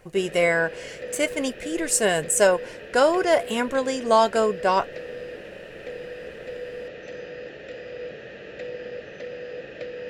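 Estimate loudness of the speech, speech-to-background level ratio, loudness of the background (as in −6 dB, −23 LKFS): −22.0 LKFS, 15.0 dB, −37.0 LKFS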